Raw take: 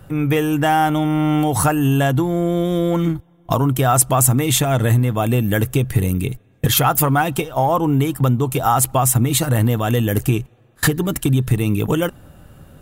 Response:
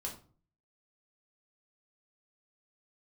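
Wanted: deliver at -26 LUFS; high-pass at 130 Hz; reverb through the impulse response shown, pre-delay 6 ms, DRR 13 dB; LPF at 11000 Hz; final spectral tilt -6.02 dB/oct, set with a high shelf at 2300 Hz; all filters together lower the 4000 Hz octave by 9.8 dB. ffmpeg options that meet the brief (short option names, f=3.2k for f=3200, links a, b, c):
-filter_complex "[0:a]highpass=130,lowpass=11k,highshelf=f=2.3k:g=-6,equalizer=f=4k:t=o:g=-7.5,asplit=2[a][b];[1:a]atrim=start_sample=2205,adelay=6[c];[b][c]afir=irnorm=-1:irlink=0,volume=-12.5dB[d];[a][d]amix=inputs=2:normalize=0,volume=-6.5dB"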